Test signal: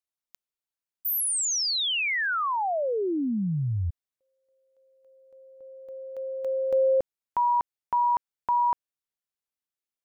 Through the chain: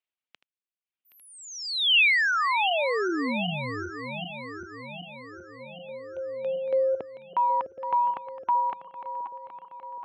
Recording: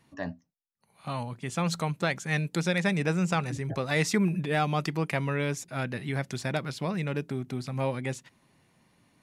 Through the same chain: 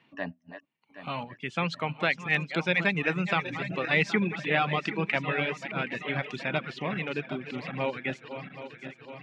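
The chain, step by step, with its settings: backward echo that repeats 386 ms, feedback 74%, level -9.5 dB; high-pass 170 Hz 12 dB/octave; reverb removal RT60 0.8 s; resonant low-pass 2.8 kHz, resonance Q 2.6; AAC 128 kbps 48 kHz

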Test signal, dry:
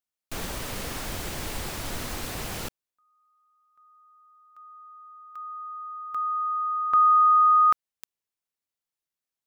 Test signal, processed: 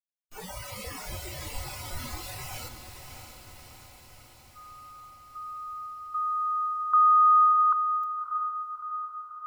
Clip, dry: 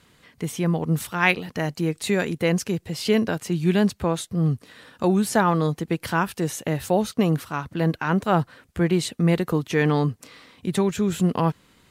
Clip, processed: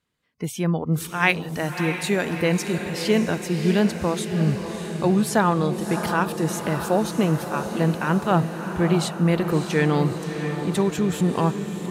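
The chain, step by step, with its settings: spectral noise reduction 21 dB; echo that smears into a reverb 632 ms, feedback 63%, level -8 dB

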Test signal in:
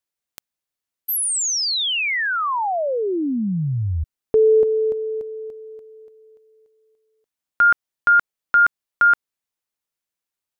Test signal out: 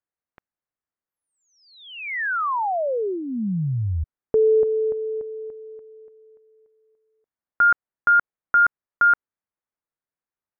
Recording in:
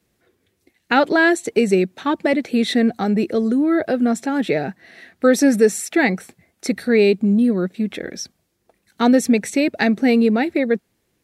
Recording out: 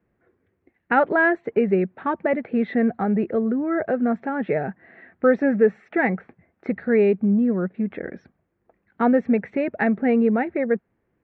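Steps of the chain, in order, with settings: low-pass 1.9 kHz 24 dB/octave; dynamic bell 300 Hz, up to -7 dB, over -32 dBFS, Q 2.9; trim -1.5 dB

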